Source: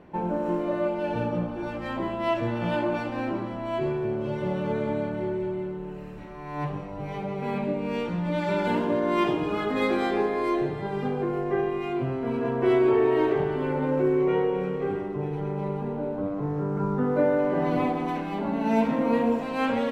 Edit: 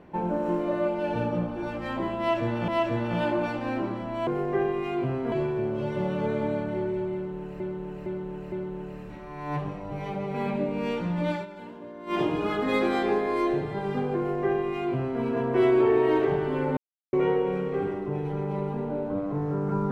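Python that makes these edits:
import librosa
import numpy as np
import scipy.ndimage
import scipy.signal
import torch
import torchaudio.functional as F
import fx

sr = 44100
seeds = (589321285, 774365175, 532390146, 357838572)

y = fx.edit(x, sr, fx.repeat(start_s=2.19, length_s=0.49, count=2),
    fx.repeat(start_s=5.6, length_s=0.46, count=4),
    fx.fade_down_up(start_s=8.39, length_s=0.9, db=-17.0, fade_s=0.15),
    fx.duplicate(start_s=11.25, length_s=1.05, to_s=3.78),
    fx.silence(start_s=13.85, length_s=0.36), tone=tone)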